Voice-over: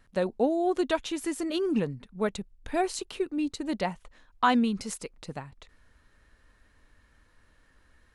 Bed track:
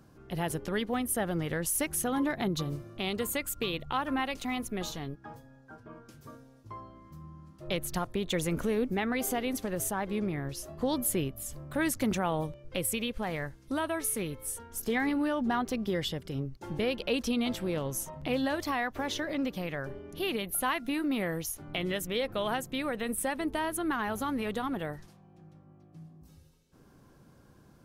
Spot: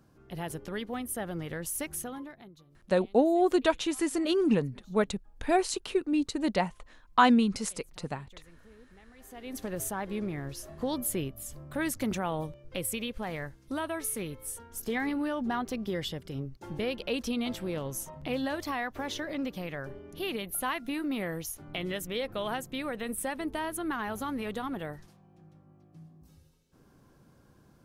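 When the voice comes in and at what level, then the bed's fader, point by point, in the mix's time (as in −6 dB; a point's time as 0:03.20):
2.75 s, +2.0 dB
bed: 0:01.97 −4.5 dB
0:02.65 −27 dB
0:09.13 −27 dB
0:09.61 −2 dB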